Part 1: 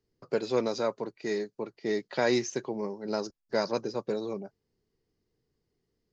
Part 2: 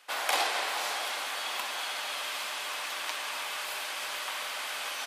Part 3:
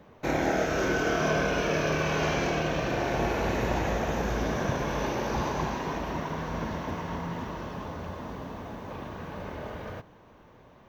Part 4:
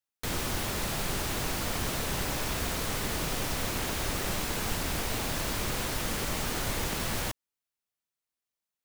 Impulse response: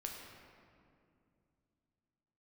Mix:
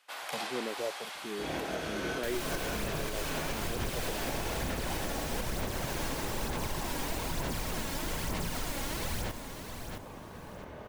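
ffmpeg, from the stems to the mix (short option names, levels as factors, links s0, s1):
-filter_complex "[0:a]afwtdn=0.0251,asplit=2[s0][s1];[s1]afreqshift=1.3[s2];[s0][s2]amix=inputs=2:normalize=1,volume=0.531,asplit=2[s3][s4];[1:a]volume=0.376[s5];[2:a]adelay=1150,volume=0.398[s6];[3:a]bandreject=f=1200:w=12,aphaser=in_gain=1:out_gain=1:delay=3.7:decay=0.61:speed=1.1:type=sinusoidal,adelay=2000,volume=0.447,asplit=2[s7][s8];[s8]volume=0.376[s9];[s4]apad=whole_len=530933[s10];[s6][s10]sidechaincompress=threshold=0.00891:ratio=8:attack=12:release=219[s11];[s9]aecho=0:1:665|1330|1995|2660:1|0.28|0.0784|0.022[s12];[s3][s5][s11][s7][s12]amix=inputs=5:normalize=0,alimiter=limit=0.0668:level=0:latency=1:release=105"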